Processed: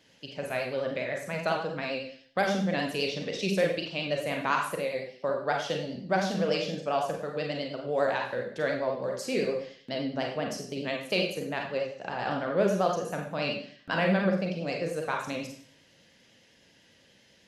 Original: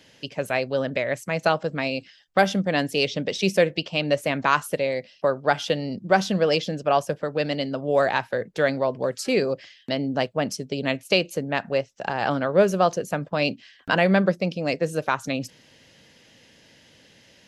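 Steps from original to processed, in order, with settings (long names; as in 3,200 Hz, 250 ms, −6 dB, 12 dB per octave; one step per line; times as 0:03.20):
four-comb reverb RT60 0.55 s, combs from 32 ms, DRR 0.5 dB
pitch vibrato 10 Hz 47 cents
level −9 dB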